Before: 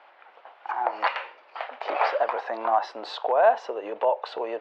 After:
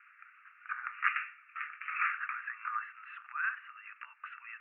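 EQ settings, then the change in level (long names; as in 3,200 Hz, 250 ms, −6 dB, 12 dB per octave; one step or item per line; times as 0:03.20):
Chebyshev band-pass filter 1,200–2,700 Hz, order 5
0.0 dB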